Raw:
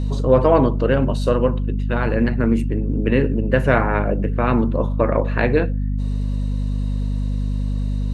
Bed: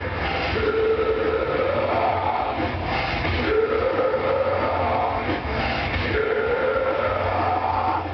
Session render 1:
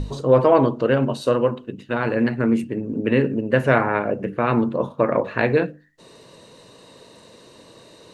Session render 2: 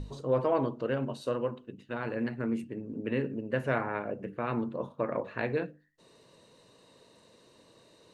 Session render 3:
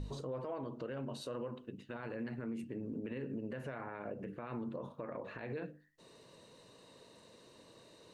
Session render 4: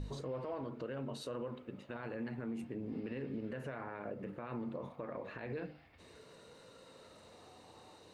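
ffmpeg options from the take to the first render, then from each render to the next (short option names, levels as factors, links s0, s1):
-af "bandreject=f=50:t=h:w=6,bandreject=f=100:t=h:w=6,bandreject=f=150:t=h:w=6,bandreject=f=200:t=h:w=6,bandreject=f=250:t=h:w=6,bandreject=f=300:t=h:w=6"
-af "volume=0.237"
-af "acompressor=threshold=0.0224:ratio=6,alimiter=level_in=2.82:limit=0.0631:level=0:latency=1:release=52,volume=0.355"
-filter_complex "[1:a]volume=0.01[s0];[0:a][s0]amix=inputs=2:normalize=0"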